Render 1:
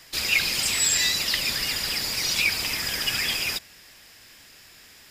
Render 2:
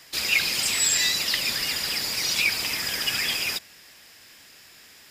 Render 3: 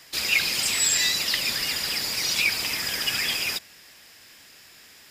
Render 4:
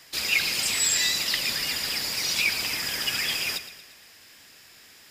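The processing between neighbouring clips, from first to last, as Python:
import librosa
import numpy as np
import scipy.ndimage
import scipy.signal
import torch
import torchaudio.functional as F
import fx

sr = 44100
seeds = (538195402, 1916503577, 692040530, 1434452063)

y1 = fx.low_shelf(x, sr, hz=75.0, db=-11.5)
y2 = y1
y3 = fx.echo_feedback(y2, sr, ms=115, feedback_pct=49, wet_db=-13.0)
y3 = y3 * 10.0 ** (-1.5 / 20.0)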